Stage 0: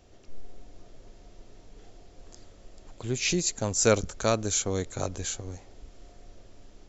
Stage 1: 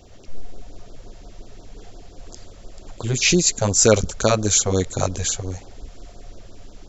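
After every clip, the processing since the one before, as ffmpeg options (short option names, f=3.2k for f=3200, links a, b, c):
-af "alimiter=level_in=11.5dB:limit=-1dB:release=50:level=0:latency=1,afftfilt=real='re*(1-between(b*sr/1024,250*pow(2500/250,0.5+0.5*sin(2*PI*5.7*pts/sr))/1.41,250*pow(2500/250,0.5+0.5*sin(2*PI*5.7*pts/sr))*1.41))':imag='im*(1-between(b*sr/1024,250*pow(2500/250,0.5+0.5*sin(2*PI*5.7*pts/sr))/1.41,250*pow(2500/250,0.5+0.5*sin(2*PI*5.7*pts/sr))*1.41))':win_size=1024:overlap=0.75,volume=-1.5dB"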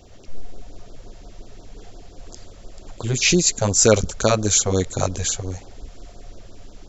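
-af anull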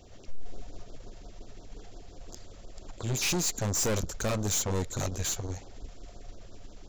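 -af "aeval=exprs='(tanh(14.1*val(0)+0.5)-tanh(0.5))/14.1':c=same,volume=-3dB"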